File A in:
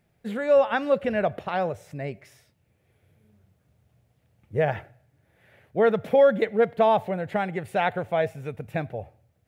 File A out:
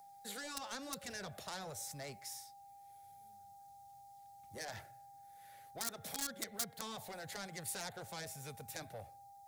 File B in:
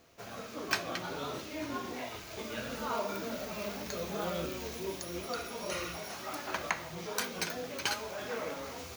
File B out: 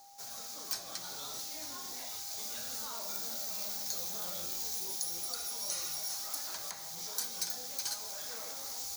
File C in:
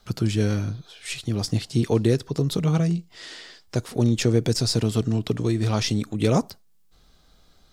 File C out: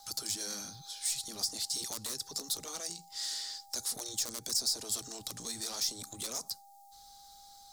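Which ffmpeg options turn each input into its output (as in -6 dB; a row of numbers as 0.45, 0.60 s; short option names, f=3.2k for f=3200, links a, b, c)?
-filter_complex "[0:a]acrossover=split=310|440|2500[a][b][c][d];[b]acrusher=bits=3:mix=0:aa=0.000001[e];[a][e][c][d]amix=inputs=4:normalize=0,aeval=exprs='val(0)+0.00447*sin(2*PI*800*n/s)':c=same,acrossover=split=360|1000[f][g][h];[f]acompressor=threshold=-29dB:ratio=4[i];[g]acompressor=threshold=-33dB:ratio=4[j];[h]acompressor=threshold=-36dB:ratio=4[k];[i][j][k]amix=inputs=3:normalize=0,afftfilt=real='re*lt(hypot(re,im),0.224)':imag='im*lt(hypot(re,im),0.224)':win_size=1024:overlap=0.75,lowshelf=f=350:g=-6.5,asoftclip=type=tanh:threshold=-34dB,aexciter=amount=9.4:drive=4.1:freq=4k,highshelf=f=9.6k:g=-4.5,volume=-7dB"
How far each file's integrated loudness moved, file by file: -20.0, +1.0, -11.5 LU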